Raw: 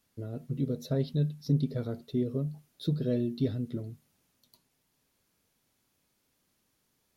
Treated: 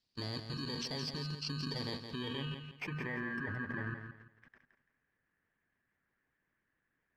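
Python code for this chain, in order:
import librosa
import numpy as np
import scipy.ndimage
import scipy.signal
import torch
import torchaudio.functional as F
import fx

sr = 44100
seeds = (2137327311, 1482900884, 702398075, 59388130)

p1 = fx.bit_reversed(x, sr, seeds[0], block=32)
p2 = fx.hpss(p1, sr, part='harmonic', gain_db=-9)
p3 = fx.over_compress(p2, sr, threshold_db=-38.0, ratio=-0.5)
p4 = p2 + (p3 * librosa.db_to_amplitude(2.0))
p5 = fx.filter_sweep_lowpass(p4, sr, from_hz=4500.0, to_hz=1700.0, start_s=1.81, end_s=3.33, q=6.4)
p6 = fx.level_steps(p5, sr, step_db=22)
p7 = fx.echo_feedback(p6, sr, ms=169, feedback_pct=28, wet_db=-8)
y = p7 * librosa.db_to_amplitude(4.5)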